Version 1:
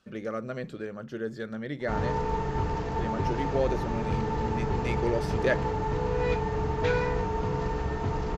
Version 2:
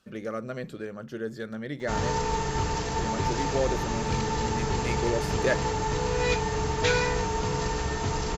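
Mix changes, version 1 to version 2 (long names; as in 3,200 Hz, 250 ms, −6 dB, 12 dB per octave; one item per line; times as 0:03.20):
background: remove low-pass filter 1,200 Hz 6 dB per octave
master: add high-shelf EQ 8,900 Hz +12 dB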